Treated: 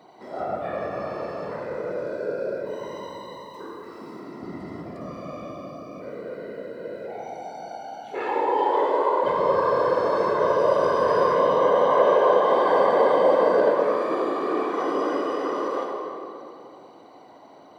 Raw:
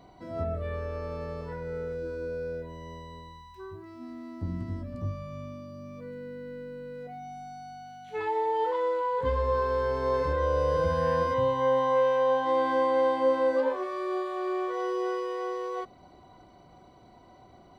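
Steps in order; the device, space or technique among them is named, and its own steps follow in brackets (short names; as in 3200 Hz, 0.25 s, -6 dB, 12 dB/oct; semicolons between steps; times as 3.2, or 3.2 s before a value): 2.66–4.2 high shelf 3800 Hz +6 dB; whispering ghost (whisperiser; HPF 280 Hz 12 dB/oct; reverb RT60 2.7 s, pre-delay 51 ms, DRR -0.5 dB); gain +3 dB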